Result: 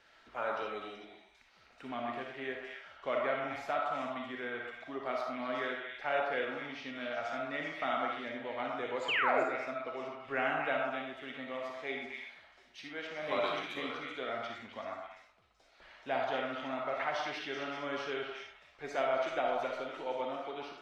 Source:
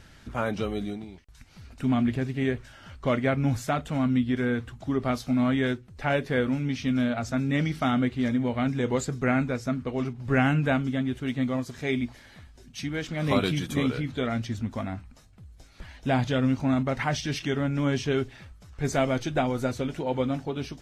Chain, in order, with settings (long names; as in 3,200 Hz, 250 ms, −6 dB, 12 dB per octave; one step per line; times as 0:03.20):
dynamic equaliser 7,700 Hz, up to −5 dB, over −51 dBFS, Q 0.85
echo through a band-pass that steps 127 ms, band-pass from 1,000 Hz, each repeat 1.4 octaves, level 0 dB
sound drawn into the spectrogram fall, 0:09.08–0:09.44, 290–3,300 Hz −24 dBFS
three-way crossover with the lows and the highs turned down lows −24 dB, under 380 Hz, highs −16 dB, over 4,900 Hz
comb and all-pass reverb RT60 0.42 s, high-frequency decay 0.6×, pre-delay 15 ms, DRR 1.5 dB
level −7.5 dB